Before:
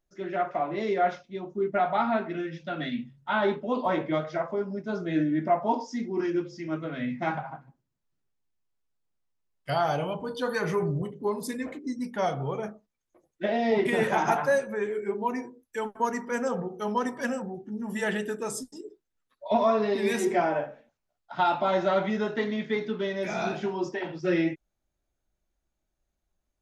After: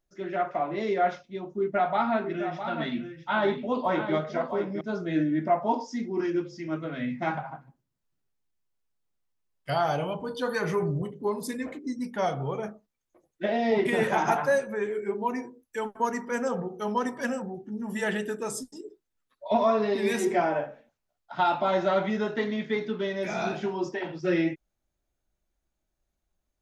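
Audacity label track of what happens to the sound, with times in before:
1.580000	4.810000	single-tap delay 659 ms −9 dB

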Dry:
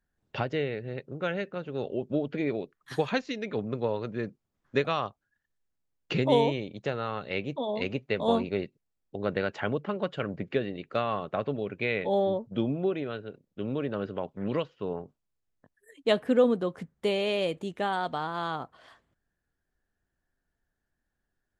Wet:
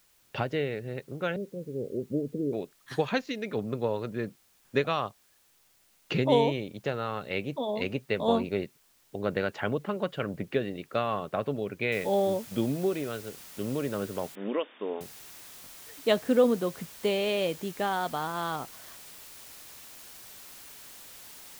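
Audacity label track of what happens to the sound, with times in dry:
1.360000	2.530000	Chebyshev low-pass filter 500 Hz, order 4
11.920000	11.920000	noise floor change −65 dB −48 dB
14.350000	15.010000	linear-phase brick-wall band-pass 200–3,700 Hz

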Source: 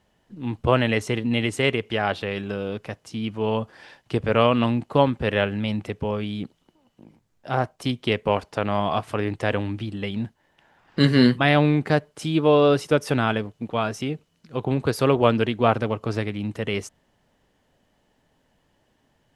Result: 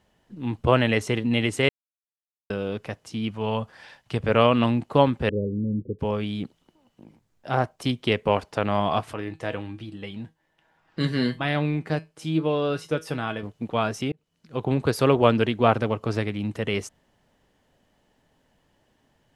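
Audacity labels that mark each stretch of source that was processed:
1.690000	2.500000	silence
3.310000	4.230000	parametric band 340 Hz −7.5 dB 0.92 octaves
5.290000	5.990000	Butterworth low-pass 500 Hz 72 dB per octave
9.130000	13.430000	tuned comb filter 160 Hz, decay 0.2 s, mix 70%
14.120000	14.810000	fade in equal-power

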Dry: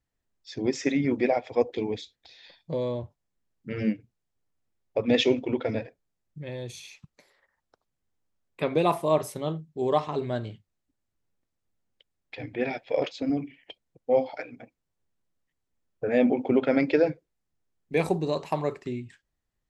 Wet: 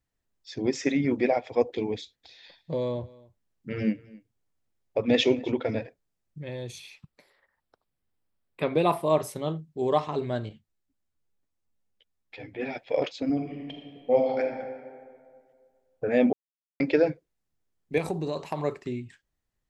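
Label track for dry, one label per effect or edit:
1.970000	5.520000	single-tap delay 263 ms −22.5 dB
6.780000	9.100000	parametric band 6,500 Hz −10.5 dB 0.34 octaves
10.490000	12.760000	string-ensemble chorus
13.320000	14.410000	thrown reverb, RT60 2 s, DRR 2 dB
16.330000	16.800000	silence
17.980000	18.630000	downward compressor 3 to 1, threshold −26 dBFS

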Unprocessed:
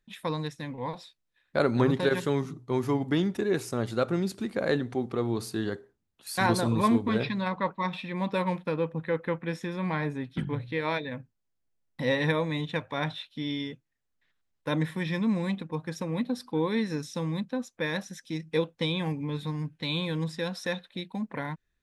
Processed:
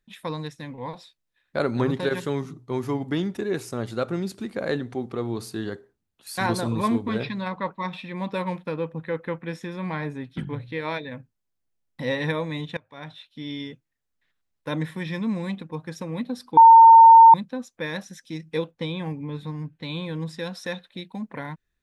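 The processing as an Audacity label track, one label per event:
12.770000	13.630000	fade in, from −22 dB
16.570000	17.340000	beep over 909 Hz −6 dBFS
18.710000	20.280000	high-shelf EQ 2,900 Hz −7.5 dB

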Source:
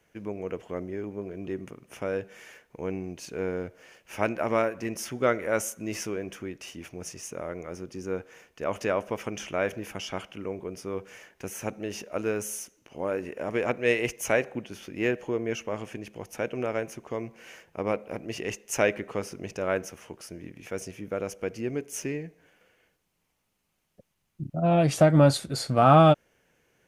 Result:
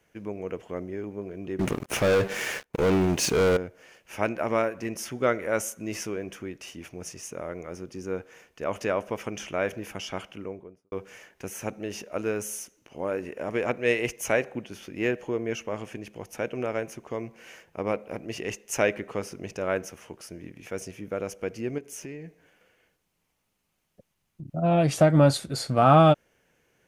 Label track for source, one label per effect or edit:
1.590000	3.570000	leveller curve on the samples passes 5
10.280000	10.920000	fade out and dull
21.780000	24.480000	downward compressor 3 to 1, threshold −37 dBFS

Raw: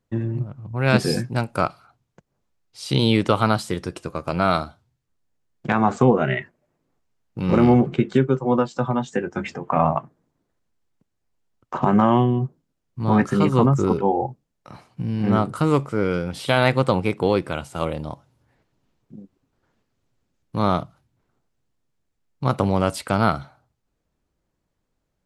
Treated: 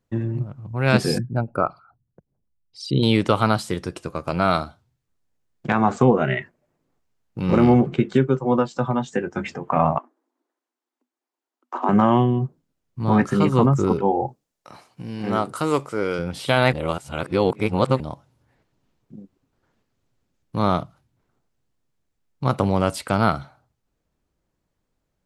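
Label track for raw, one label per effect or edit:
1.180000	3.030000	spectral envelope exaggerated exponent 2
9.980000	11.890000	Chebyshev high-pass with heavy ripple 240 Hz, ripple 6 dB
14.280000	16.190000	bass and treble bass −10 dB, treble +5 dB
16.730000	18.000000	reverse

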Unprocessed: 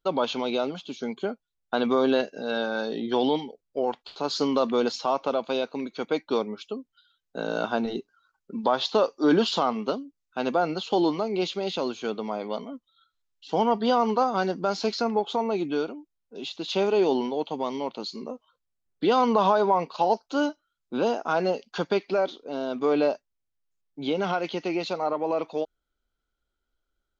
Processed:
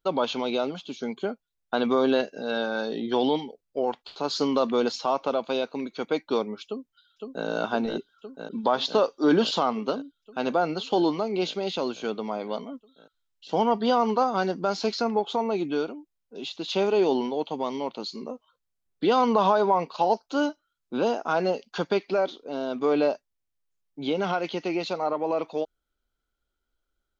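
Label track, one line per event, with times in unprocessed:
6.650000	7.460000	delay throw 510 ms, feedback 80%, level −4.5 dB

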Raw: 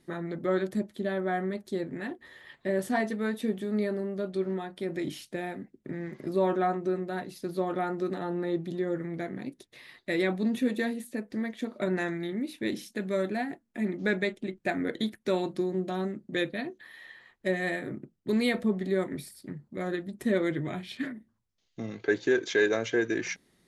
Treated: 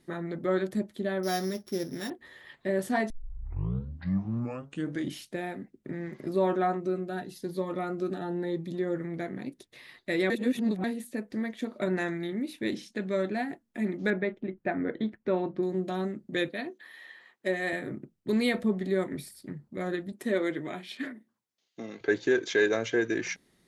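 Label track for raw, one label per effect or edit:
1.230000	2.100000	samples sorted by size in blocks of 8 samples
3.100000	3.100000	tape start 2.07 s
6.800000	8.740000	phaser whose notches keep moving one way rising 1 Hz
10.300000	10.840000	reverse
12.750000	13.370000	low-pass filter 6,600 Hz
14.100000	15.630000	low-pass filter 1,800 Hz
16.480000	17.730000	high-pass filter 240 Hz
20.120000	22.010000	high-pass filter 260 Hz

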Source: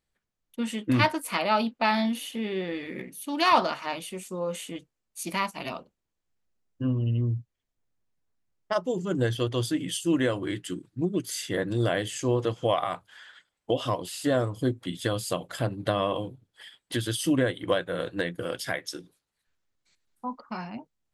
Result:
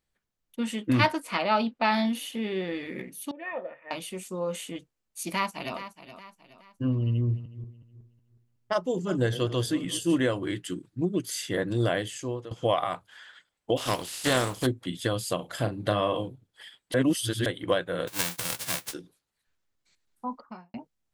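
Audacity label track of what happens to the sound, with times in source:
1.200000	1.920000	high-frequency loss of the air 57 metres
3.310000	3.910000	formant resonators in series e
5.320000	5.770000	delay throw 420 ms, feedback 40%, level −12.5 dB
7.090000	10.220000	feedback delay that plays each chunk backwards 184 ms, feedback 51%, level −14 dB
11.910000	12.510000	fade out, to −17.5 dB
13.760000	14.650000	compressing power law on the bin magnitudes exponent 0.51
15.350000	16.230000	double-tracking delay 38 ms −9 dB
16.940000	17.460000	reverse
18.070000	18.920000	spectral envelope flattened exponent 0.1
20.320000	20.740000	fade out and dull

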